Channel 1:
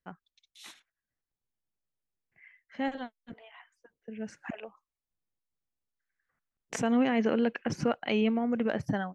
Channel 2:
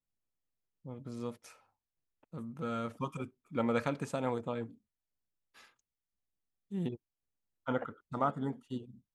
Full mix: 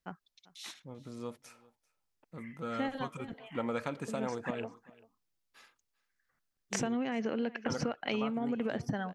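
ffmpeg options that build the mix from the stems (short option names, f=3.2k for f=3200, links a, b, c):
-filter_complex "[0:a]equalizer=f=5k:t=o:w=0.81:g=5.5,volume=1dB,asplit=2[a][b];[b]volume=-21.5dB[c];[1:a]lowshelf=f=210:g=-5.5,volume=0dB,asplit=2[d][e];[e]volume=-24dB[f];[c][f]amix=inputs=2:normalize=0,aecho=0:1:392:1[g];[a][d][g]amix=inputs=3:normalize=0,acompressor=threshold=-29dB:ratio=12"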